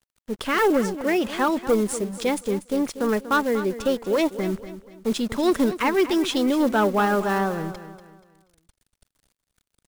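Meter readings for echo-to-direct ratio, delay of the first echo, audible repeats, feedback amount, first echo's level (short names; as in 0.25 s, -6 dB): -12.5 dB, 0.24 s, 3, 37%, -13.0 dB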